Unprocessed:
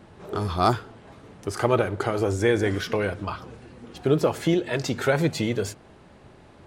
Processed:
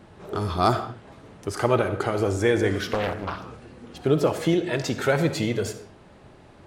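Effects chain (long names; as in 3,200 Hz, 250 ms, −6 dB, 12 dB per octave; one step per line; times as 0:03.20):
on a send at −10 dB: convolution reverb, pre-delay 20 ms
0:02.94–0:03.45: on the sum: highs frequency-modulated by the lows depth 0.84 ms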